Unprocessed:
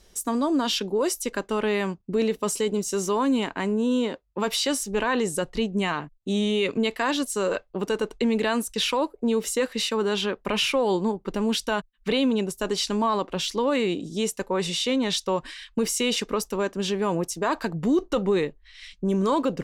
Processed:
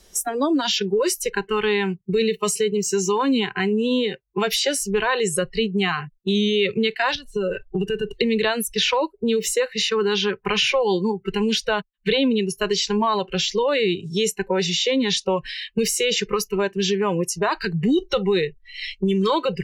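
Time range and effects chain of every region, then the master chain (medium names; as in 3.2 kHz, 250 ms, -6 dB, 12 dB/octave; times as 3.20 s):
7.15–8.13 s: compression 5:1, threshold -29 dBFS + tilt EQ -2.5 dB/octave + band-stop 2.2 kHz, Q 24
whole clip: spectral noise reduction 22 dB; treble shelf 7.2 kHz +5.5 dB; three bands compressed up and down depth 70%; trim +4 dB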